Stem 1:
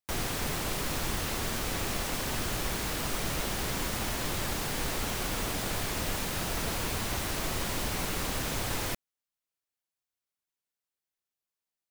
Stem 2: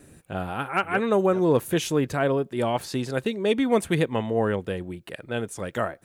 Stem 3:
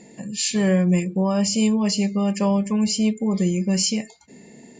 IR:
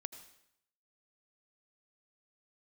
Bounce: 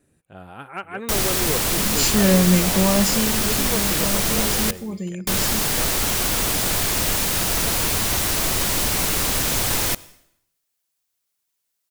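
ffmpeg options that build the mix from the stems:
-filter_complex "[0:a]highshelf=frequency=4000:gain=8.5,adelay=1000,volume=-1dB,asplit=3[link_01][link_02][link_03];[link_01]atrim=end=4.71,asetpts=PTS-STARTPTS,afade=type=out:start_time=4.706:duration=0.004:curve=hsin[link_04];[link_02]atrim=start=4.71:end=5.27,asetpts=PTS-STARTPTS,volume=0[link_05];[link_03]atrim=start=5.27,asetpts=PTS-STARTPTS,afade=type=in:duration=0.004:curve=hsin[link_06];[link_04][link_05][link_06]concat=n=3:v=0:a=1,asplit=2[link_07][link_08];[link_08]volume=-5.5dB[link_09];[1:a]volume=-13.5dB[link_10];[2:a]adelay=1600,volume=-3.5dB,afade=type=out:start_time=2.95:duration=0.37:silence=0.281838[link_11];[3:a]atrim=start_sample=2205[link_12];[link_09][link_12]afir=irnorm=-1:irlink=0[link_13];[link_07][link_10][link_11][link_13]amix=inputs=4:normalize=0,dynaudnorm=framelen=100:gausssize=9:maxgain=6dB"

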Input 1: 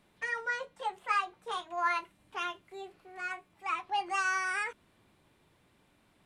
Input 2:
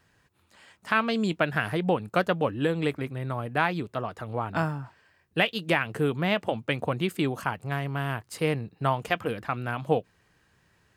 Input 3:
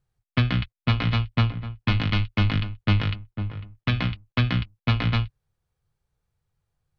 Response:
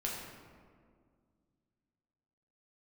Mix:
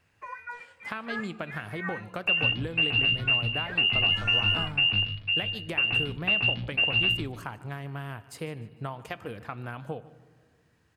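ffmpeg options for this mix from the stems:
-filter_complex "[0:a]highshelf=frequency=2700:gain=8,volume=-8dB,asplit=2[link_01][link_02];[link_02]volume=-16dB[link_03];[1:a]acompressor=threshold=-27dB:ratio=6,equalizer=frequency=86:width_type=o:width=0.76:gain=5.5,volume=-6dB,asplit=3[link_04][link_05][link_06];[link_05]volume=-17dB[link_07];[link_06]volume=-18dB[link_08];[2:a]equalizer=frequency=1100:width_type=o:width=2.7:gain=-13,adelay=1900,volume=2dB,asplit=2[link_09][link_10];[link_10]volume=-14.5dB[link_11];[link_01][link_09]amix=inputs=2:normalize=0,lowpass=frequency=2500:width_type=q:width=0.5098,lowpass=frequency=2500:width_type=q:width=0.6013,lowpass=frequency=2500:width_type=q:width=0.9,lowpass=frequency=2500:width_type=q:width=2.563,afreqshift=-2900,alimiter=limit=-16dB:level=0:latency=1:release=283,volume=0dB[link_12];[3:a]atrim=start_sample=2205[link_13];[link_03][link_07]amix=inputs=2:normalize=0[link_14];[link_14][link_13]afir=irnorm=-1:irlink=0[link_15];[link_08][link_11]amix=inputs=2:normalize=0,aecho=0:1:150|300|450|600|750:1|0.32|0.102|0.0328|0.0105[link_16];[link_04][link_12][link_15][link_16]amix=inputs=4:normalize=0"

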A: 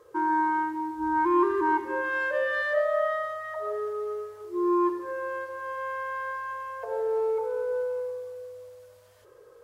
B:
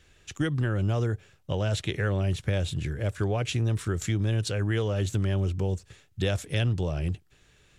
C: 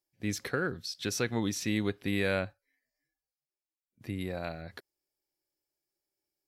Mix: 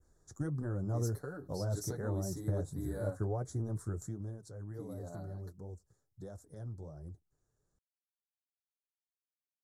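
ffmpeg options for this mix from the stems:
ffmpeg -i stem1.wav -i stem2.wav -i stem3.wav -filter_complex "[1:a]volume=-4.5dB,afade=type=out:start_time=3.77:duration=0.62:silence=0.316228[link_01];[2:a]aecho=1:1:6.9:0.69,adynamicequalizer=threshold=0.00447:dfrequency=2900:dqfactor=0.7:tfrequency=2900:tqfactor=0.7:attack=5:release=100:ratio=0.375:range=4:mode=boostabove:tftype=highshelf,adelay=700,volume=-8.5dB[link_02];[link_01][link_02]amix=inputs=2:normalize=0,adynamicequalizer=threshold=0.00251:dfrequency=4300:dqfactor=0.83:tfrequency=4300:tqfactor=0.83:attack=5:release=100:ratio=0.375:range=3:mode=cutabove:tftype=bell,flanger=delay=2.4:depth=6.9:regen=-38:speed=1.4:shape=triangular,asuperstop=centerf=2700:order=4:qfactor=0.55" out.wav

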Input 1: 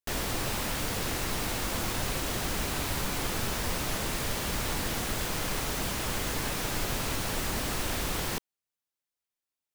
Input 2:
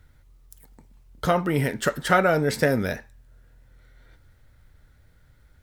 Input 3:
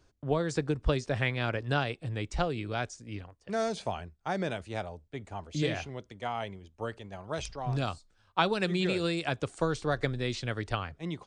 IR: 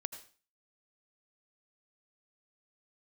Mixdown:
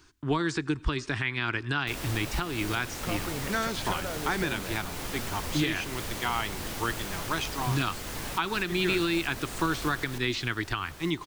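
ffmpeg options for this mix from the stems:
-filter_complex "[0:a]adelay=1800,volume=-4.5dB,asplit=2[link_01][link_02];[link_02]volume=-11.5dB[link_03];[1:a]acompressor=threshold=-24dB:ratio=6,adelay=1800,volume=-8.5dB[link_04];[2:a]acrossover=split=3900[link_05][link_06];[link_06]acompressor=threshold=-50dB:ratio=4:attack=1:release=60[link_07];[link_05][link_07]amix=inputs=2:normalize=0,firequalizer=gain_entry='entry(210,0);entry(340,8);entry(530,-13);entry(950,7);entry(1500,9)':delay=0.05:min_phase=1,volume=1.5dB,asplit=2[link_08][link_09];[link_09]volume=-14dB[link_10];[3:a]atrim=start_sample=2205[link_11];[link_10][link_11]afir=irnorm=-1:irlink=0[link_12];[link_03]aecho=0:1:924|1848|2772|3696|4620|5544:1|0.43|0.185|0.0795|0.0342|0.0147[link_13];[link_01][link_04][link_08][link_12][link_13]amix=inputs=5:normalize=0,alimiter=limit=-16.5dB:level=0:latency=1:release=273"

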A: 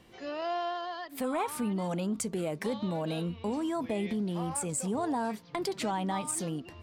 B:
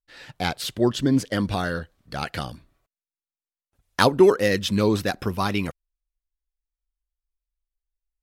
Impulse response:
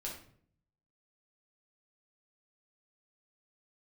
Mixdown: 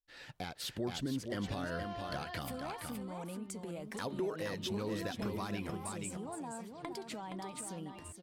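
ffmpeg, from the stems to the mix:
-filter_complex "[0:a]acompressor=threshold=-42dB:ratio=6,adelay=1300,volume=-4dB,asplit=2[link_01][link_02];[link_02]volume=-6.5dB[link_03];[1:a]acompressor=threshold=-35dB:ratio=2,asoftclip=type=tanh:threshold=-12.5dB,volume=-8dB,asplit=2[link_04][link_05];[link_05]volume=-8dB[link_06];[link_03][link_06]amix=inputs=2:normalize=0,aecho=0:1:470:1[link_07];[link_01][link_04][link_07]amix=inputs=3:normalize=0,dynaudnorm=framelen=100:gausssize=13:maxgain=4dB,alimiter=level_in=4dB:limit=-24dB:level=0:latency=1:release=119,volume=-4dB"

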